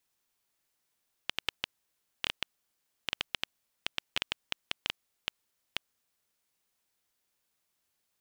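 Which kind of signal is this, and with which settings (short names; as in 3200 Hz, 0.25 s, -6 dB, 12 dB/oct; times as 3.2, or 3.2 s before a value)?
random clicks 5/s -11 dBFS 5.15 s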